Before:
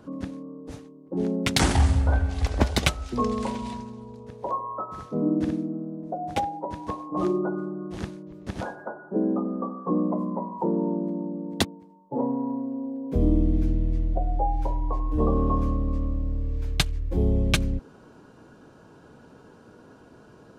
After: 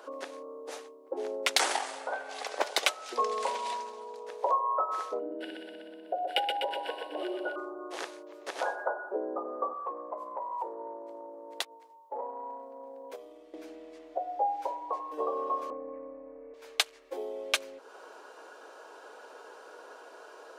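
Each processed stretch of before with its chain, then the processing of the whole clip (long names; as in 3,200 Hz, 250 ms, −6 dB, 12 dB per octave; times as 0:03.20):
0:05.19–0:07.56: phaser with its sweep stopped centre 2,800 Hz, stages 4 + hollow resonant body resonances 1,500/2,900 Hz, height 17 dB, ringing for 40 ms + repeating echo 124 ms, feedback 57%, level −5 dB
0:09.73–0:13.54: parametric band 290 Hz −9 dB 2.5 octaves + downward compressor 3 to 1, threshold −38 dBFS
0:15.70–0:16.54: Butterworth low-pass 2,400 Hz 72 dB per octave + tilt shelving filter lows +5.5 dB, about 800 Hz + comb filter 4 ms, depth 99%
whole clip: downward compressor 2 to 1, threshold −33 dBFS; inverse Chebyshev high-pass filter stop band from 180 Hz, stop band 50 dB; level +6.5 dB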